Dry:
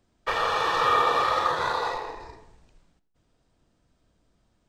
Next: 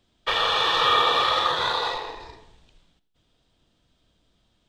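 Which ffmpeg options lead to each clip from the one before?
ffmpeg -i in.wav -af "equalizer=frequency=3400:width=1.9:gain=13" out.wav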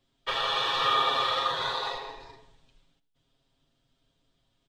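ffmpeg -i in.wav -af "aecho=1:1:7.4:0.74,volume=-7.5dB" out.wav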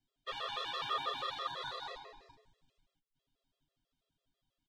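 ffmpeg -i in.wav -af "afftfilt=real='re*gt(sin(2*PI*6.1*pts/sr)*(1-2*mod(floor(b*sr/1024/350),2)),0)':imag='im*gt(sin(2*PI*6.1*pts/sr)*(1-2*mod(floor(b*sr/1024/350),2)),0)':win_size=1024:overlap=0.75,volume=-9dB" out.wav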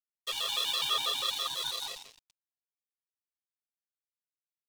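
ffmpeg -i in.wav -af "aeval=exprs='sgn(val(0))*max(abs(val(0))-0.00266,0)':channel_layout=same,aexciter=amount=3.1:drive=7.9:freq=2500,volume=1.5dB" out.wav

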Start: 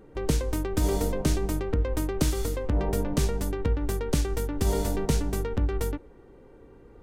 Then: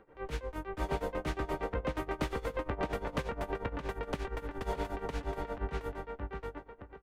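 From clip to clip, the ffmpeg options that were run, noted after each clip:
ffmpeg -i in.wav -filter_complex "[0:a]acrossover=split=570 2900:gain=0.224 1 0.0891[link_01][link_02][link_03];[link_01][link_02][link_03]amix=inputs=3:normalize=0,asplit=2[link_04][link_05];[link_05]adelay=620,lowpass=frequency=3900:poles=1,volume=-3dB,asplit=2[link_06][link_07];[link_07]adelay=620,lowpass=frequency=3900:poles=1,volume=0.3,asplit=2[link_08][link_09];[link_09]adelay=620,lowpass=frequency=3900:poles=1,volume=0.3,asplit=2[link_10][link_11];[link_11]adelay=620,lowpass=frequency=3900:poles=1,volume=0.3[link_12];[link_04][link_06][link_08][link_10][link_12]amix=inputs=5:normalize=0,tremolo=f=8.5:d=0.86,volume=2.5dB" out.wav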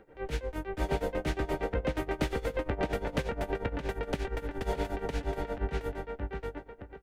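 ffmpeg -i in.wav -af "equalizer=frequency=1100:width_type=o:width=0.38:gain=-10,volume=4dB" out.wav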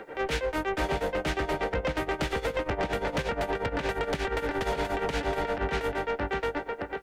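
ffmpeg -i in.wav -filter_complex "[0:a]acrossover=split=170[link_01][link_02];[link_02]acompressor=threshold=-39dB:ratio=6[link_03];[link_01][link_03]amix=inputs=2:normalize=0,asplit=2[link_04][link_05];[link_05]highpass=frequency=720:poles=1,volume=23dB,asoftclip=type=tanh:threshold=-21dB[link_06];[link_04][link_06]amix=inputs=2:normalize=0,lowpass=frequency=5700:poles=1,volume=-6dB,volume=2.5dB" out.wav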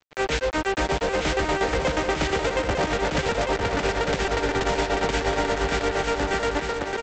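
ffmpeg -i in.wav -af "aresample=16000,acrusher=bits=4:mix=0:aa=0.5,aresample=44100,aecho=1:1:901:0.531,volume=4dB" out.wav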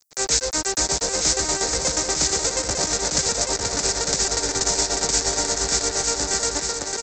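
ffmpeg -i in.wav -af "aexciter=amount=15.3:drive=4.9:freq=4600,volume=-4dB" out.wav

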